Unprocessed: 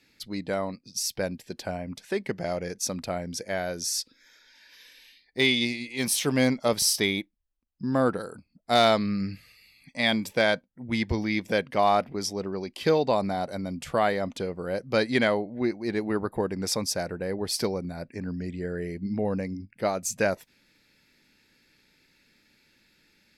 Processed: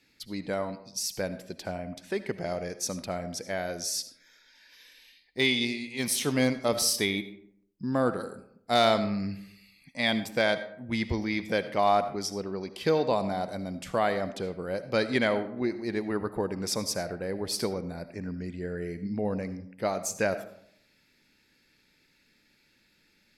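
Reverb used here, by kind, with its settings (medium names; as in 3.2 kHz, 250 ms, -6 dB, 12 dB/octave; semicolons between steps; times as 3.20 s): algorithmic reverb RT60 0.69 s, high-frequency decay 0.5×, pre-delay 35 ms, DRR 12 dB; trim -2.5 dB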